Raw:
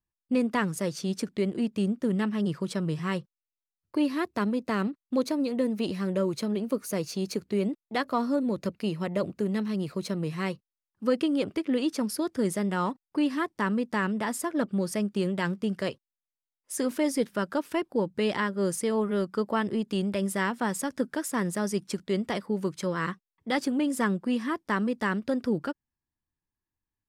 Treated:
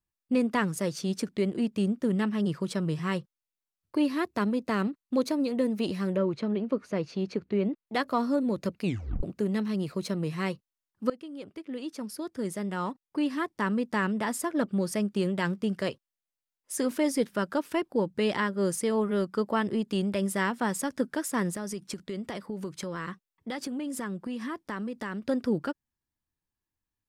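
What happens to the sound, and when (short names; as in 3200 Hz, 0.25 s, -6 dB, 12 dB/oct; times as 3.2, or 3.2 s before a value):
6.16–7.87 LPF 2900 Hz
8.83 tape stop 0.40 s
11.1–13.97 fade in, from -19 dB
21.53–25.26 compressor, threshold -31 dBFS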